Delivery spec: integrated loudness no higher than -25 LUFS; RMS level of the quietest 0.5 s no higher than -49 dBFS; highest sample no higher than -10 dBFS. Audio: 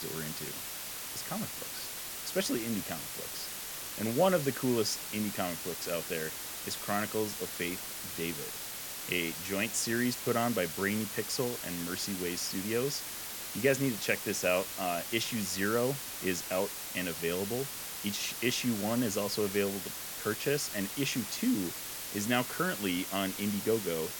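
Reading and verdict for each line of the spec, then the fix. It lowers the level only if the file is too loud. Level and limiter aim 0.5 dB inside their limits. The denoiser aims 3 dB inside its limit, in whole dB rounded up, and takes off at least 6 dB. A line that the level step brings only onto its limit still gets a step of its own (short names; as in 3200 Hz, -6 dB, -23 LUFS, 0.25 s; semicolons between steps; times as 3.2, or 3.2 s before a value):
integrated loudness -32.5 LUFS: OK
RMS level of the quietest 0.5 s -41 dBFS: fail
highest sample -13.5 dBFS: OK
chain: denoiser 11 dB, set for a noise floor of -41 dBFS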